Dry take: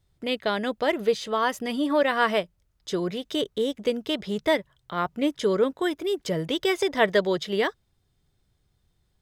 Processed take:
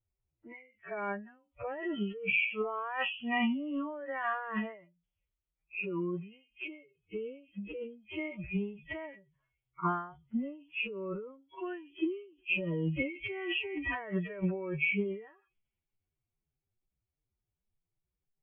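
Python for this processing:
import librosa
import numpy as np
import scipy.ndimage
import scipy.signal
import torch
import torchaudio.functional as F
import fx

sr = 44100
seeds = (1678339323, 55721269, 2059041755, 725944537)

y = fx.freq_compress(x, sr, knee_hz=1900.0, ratio=4.0)
y = fx.env_lowpass(y, sr, base_hz=1100.0, full_db=-20.5)
y = fx.noise_reduce_blind(y, sr, reduce_db=25)
y = fx.over_compress(y, sr, threshold_db=-34.0, ratio=-1.0)
y = fx.stretch_vocoder(y, sr, factor=2.0)
y = fx.end_taper(y, sr, db_per_s=120.0)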